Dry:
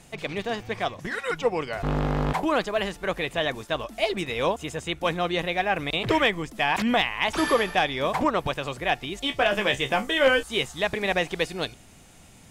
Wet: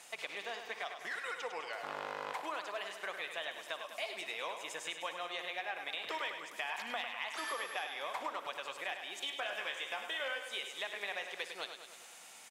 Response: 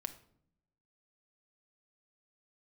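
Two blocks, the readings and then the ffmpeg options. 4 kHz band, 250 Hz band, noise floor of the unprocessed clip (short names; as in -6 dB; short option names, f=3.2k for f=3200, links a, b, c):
-12.0 dB, -27.5 dB, -51 dBFS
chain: -filter_complex "[0:a]highpass=780,acompressor=threshold=-40dB:ratio=4,aecho=1:1:102|204|306|408|510|612|714|816:0.398|0.239|0.143|0.086|0.0516|0.031|0.0186|0.0111,asplit=2[a][b];[1:a]atrim=start_sample=2205,adelay=60[c];[b][c]afir=irnorm=-1:irlink=0,volume=-12dB[d];[a][d]amix=inputs=2:normalize=0"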